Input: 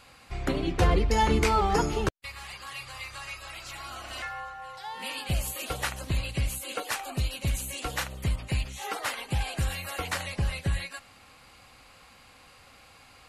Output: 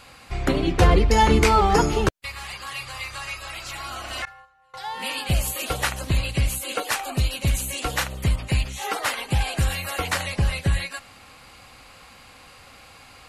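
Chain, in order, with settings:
0:04.25–0:04.74: noise gate −34 dBFS, range −25 dB
level +6.5 dB

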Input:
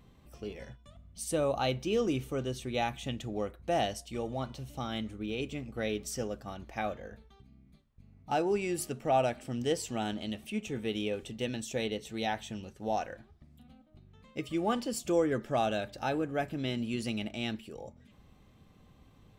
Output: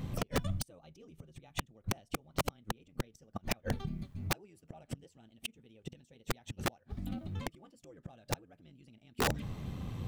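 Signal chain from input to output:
gate with flip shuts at −32 dBFS, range −42 dB
parametric band 120 Hz +9.5 dB 1.4 octaves
time stretch by overlap-add 0.52×, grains 22 ms
wrap-around overflow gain 38 dB
level +15 dB

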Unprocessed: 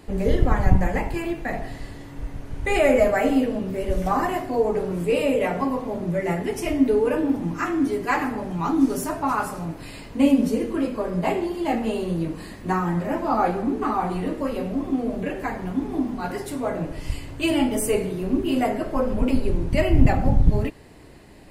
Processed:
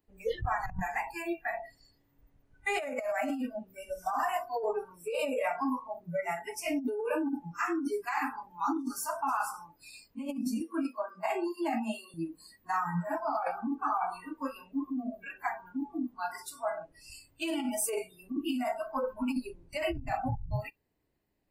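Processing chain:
noise reduction from a noise print of the clip's start 29 dB
compressor whose output falls as the input rises −25 dBFS, ratio −1
0:10.60–0:12.14: Butterworth high-pass 210 Hz 96 dB per octave
level −6.5 dB

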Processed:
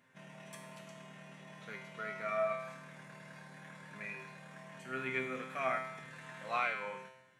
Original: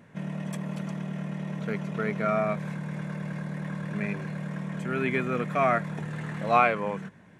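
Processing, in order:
tilt shelving filter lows −7 dB, about 680 Hz
tuned comb filter 130 Hz, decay 0.83 s, harmonics all, mix 90%
level +1 dB

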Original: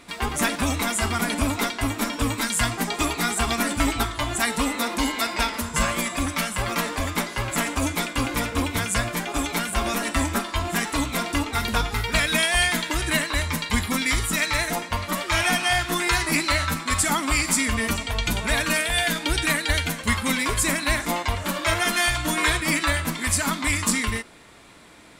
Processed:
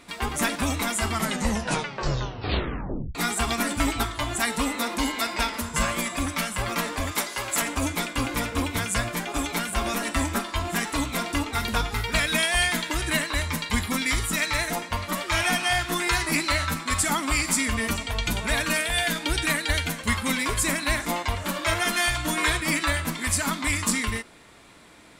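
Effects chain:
0:01.08: tape stop 2.07 s
0:07.11–0:07.62: bass and treble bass −12 dB, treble +6 dB
level −2 dB

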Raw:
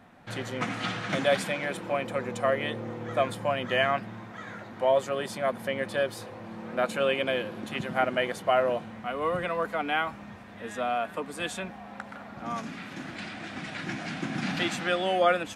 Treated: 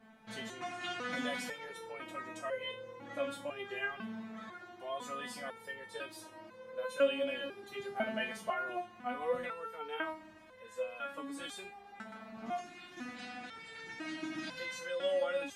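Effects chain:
in parallel at −1 dB: brickwall limiter −21.5 dBFS, peak gain reduction 11 dB
on the sum: step-sequenced resonator 2 Hz 220–510 Hz
level +1.5 dB

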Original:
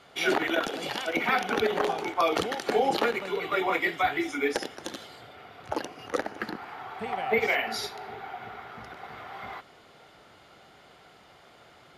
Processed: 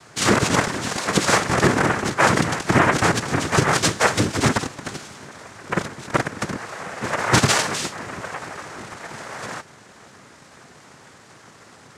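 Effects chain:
cochlear-implant simulation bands 3
low-shelf EQ 190 Hz +8 dB
level +7 dB

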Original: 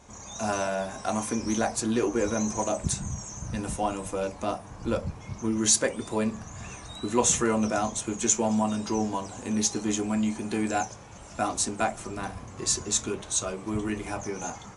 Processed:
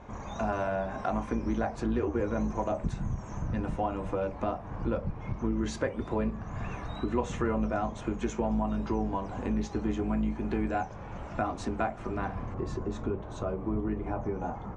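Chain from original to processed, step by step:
sub-octave generator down 2 octaves, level −3 dB
low-pass filter 1,900 Hz 12 dB per octave, from 0:12.54 1,000 Hz
downward compressor 2.5 to 1, threshold −37 dBFS, peak gain reduction 13 dB
level +6 dB

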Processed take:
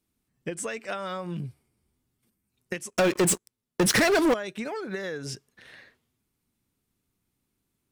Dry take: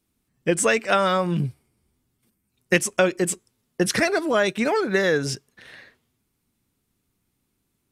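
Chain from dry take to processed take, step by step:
downward compressor 12 to 1, threshold −25 dBFS, peak gain reduction 13 dB
0:02.90–0:04.34: leveller curve on the samples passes 5
level −4.5 dB

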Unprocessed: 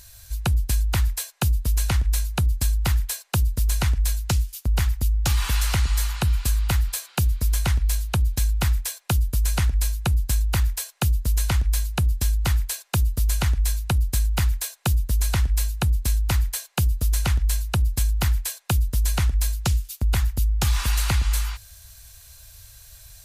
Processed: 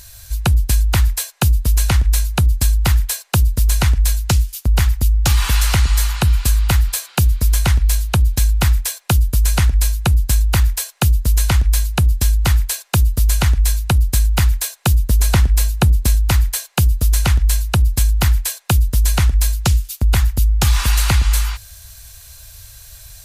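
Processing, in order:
0:15.09–0:16.15: parametric band 310 Hz +4.5 dB 2.9 octaves
level +7 dB

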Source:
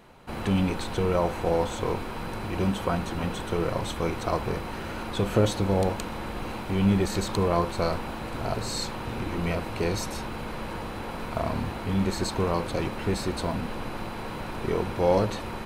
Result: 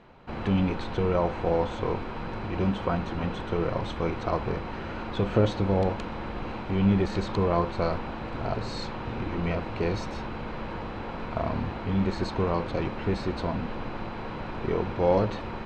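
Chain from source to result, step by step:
high-frequency loss of the air 180 metres

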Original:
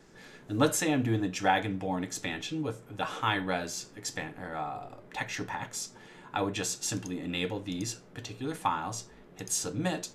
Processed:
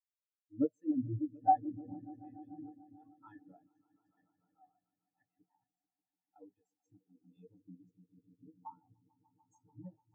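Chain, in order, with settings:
echo that builds up and dies away 147 ms, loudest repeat 5, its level −8 dB
every bin expanded away from the loudest bin 4 to 1
level −6.5 dB

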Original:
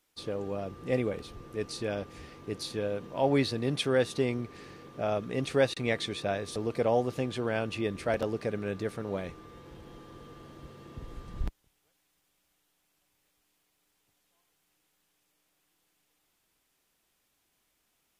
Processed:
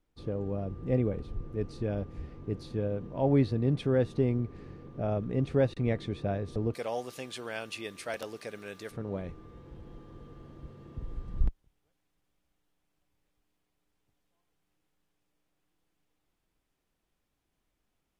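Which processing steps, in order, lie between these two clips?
spectral tilt −4 dB per octave, from 0:06.73 +3 dB per octave, from 0:08.90 −2.5 dB per octave
level −5.5 dB

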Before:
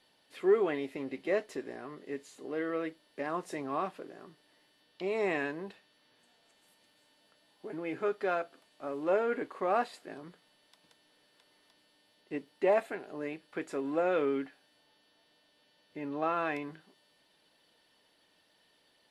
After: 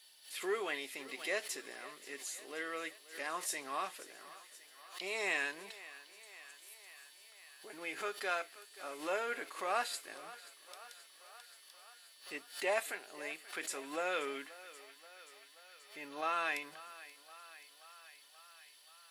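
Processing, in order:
first difference
feedback echo with a high-pass in the loop 530 ms, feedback 74%, high-pass 410 Hz, level −17 dB
background raised ahead of every attack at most 140 dB per second
level +13 dB

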